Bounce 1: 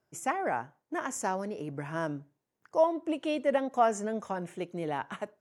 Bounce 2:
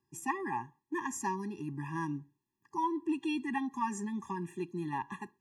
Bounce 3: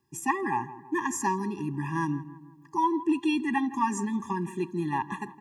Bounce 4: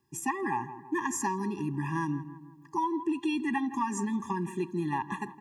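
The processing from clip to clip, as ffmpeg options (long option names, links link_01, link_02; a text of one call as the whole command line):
ffmpeg -i in.wav -af "afftfilt=real='re*eq(mod(floor(b*sr/1024/400),2),0)':imag='im*eq(mod(floor(b*sr/1024/400),2),0)':win_size=1024:overlap=0.75" out.wav
ffmpeg -i in.wav -filter_complex "[0:a]asplit=2[link_01][link_02];[link_02]adelay=163,lowpass=frequency=1500:poles=1,volume=-14.5dB,asplit=2[link_03][link_04];[link_04]adelay=163,lowpass=frequency=1500:poles=1,volume=0.53,asplit=2[link_05][link_06];[link_06]adelay=163,lowpass=frequency=1500:poles=1,volume=0.53,asplit=2[link_07][link_08];[link_08]adelay=163,lowpass=frequency=1500:poles=1,volume=0.53,asplit=2[link_09][link_10];[link_10]adelay=163,lowpass=frequency=1500:poles=1,volume=0.53[link_11];[link_01][link_03][link_05][link_07][link_09][link_11]amix=inputs=6:normalize=0,volume=7dB" out.wav
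ffmpeg -i in.wav -af "acompressor=threshold=-26dB:ratio=6" out.wav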